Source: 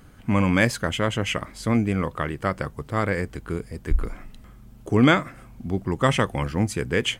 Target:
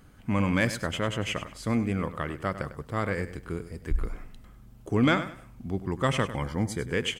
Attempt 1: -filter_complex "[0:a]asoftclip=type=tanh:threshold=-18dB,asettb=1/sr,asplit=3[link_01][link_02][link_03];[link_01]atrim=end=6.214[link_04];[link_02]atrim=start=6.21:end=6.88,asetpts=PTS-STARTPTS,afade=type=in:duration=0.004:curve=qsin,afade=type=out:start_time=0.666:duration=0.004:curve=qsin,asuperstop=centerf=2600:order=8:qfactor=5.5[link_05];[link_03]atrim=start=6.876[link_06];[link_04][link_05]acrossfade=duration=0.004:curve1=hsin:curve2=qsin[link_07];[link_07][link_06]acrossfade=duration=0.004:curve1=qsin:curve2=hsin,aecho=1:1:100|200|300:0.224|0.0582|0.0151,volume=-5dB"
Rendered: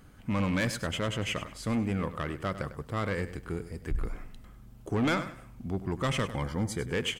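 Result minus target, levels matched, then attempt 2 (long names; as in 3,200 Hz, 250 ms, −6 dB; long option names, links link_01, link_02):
soft clipping: distortion +15 dB
-filter_complex "[0:a]asoftclip=type=tanh:threshold=-6dB,asettb=1/sr,asplit=3[link_01][link_02][link_03];[link_01]atrim=end=6.214[link_04];[link_02]atrim=start=6.21:end=6.88,asetpts=PTS-STARTPTS,afade=type=in:duration=0.004:curve=qsin,afade=type=out:start_time=0.666:duration=0.004:curve=qsin,asuperstop=centerf=2600:order=8:qfactor=5.5[link_05];[link_03]atrim=start=6.876[link_06];[link_04][link_05]acrossfade=duration=0.004:curve1=hsin:curve2=qsin[link_07];[link_07][link_06]acrossfade=duration=0.004:curve1=qsin:curve2=hsin,aecho=1:1:100|200|300:0.224|0.0582|0.0151,volume=-5dB"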